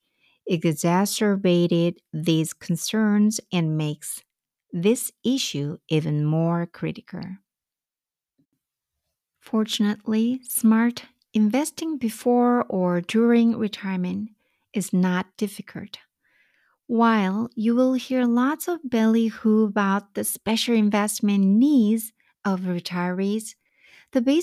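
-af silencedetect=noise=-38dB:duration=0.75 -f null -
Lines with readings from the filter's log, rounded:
silence_start: 7.35
silence_end: 9.47 | silence_duration: 2.11
silence_start: 15.96
silence_end: 16.89 | silence_duration: 0.93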